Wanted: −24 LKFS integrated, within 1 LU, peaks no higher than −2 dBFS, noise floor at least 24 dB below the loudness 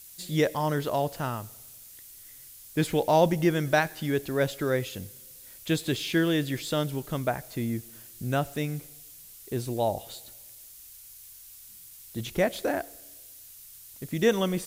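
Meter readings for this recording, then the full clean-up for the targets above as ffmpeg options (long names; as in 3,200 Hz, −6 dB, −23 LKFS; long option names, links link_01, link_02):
background noise floor −49 dBFS; target noise floor −52 dBFS; integrated loudness −28.0 LKFS; sample peak −9.5 dBFS; target loudness −24.0 LKFS
→ -af "afftdn=noise_reduction=6:noise_floor=-49"
-af "volume=4dB"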